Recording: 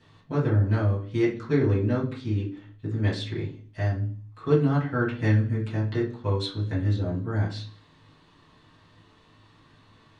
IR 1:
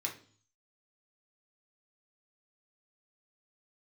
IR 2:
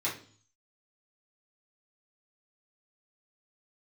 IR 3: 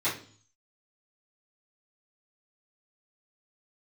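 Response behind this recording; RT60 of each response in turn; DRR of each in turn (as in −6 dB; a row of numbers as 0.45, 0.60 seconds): 2; 0.45, 0.45, 0.45 seconds; −0.5, −7.5, −13.0 decibels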